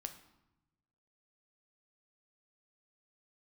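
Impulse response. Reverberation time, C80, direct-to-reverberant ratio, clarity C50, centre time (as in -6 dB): 0.95 s, 14.0 dB, 6.5 dB, 11.0 dB, 11 ms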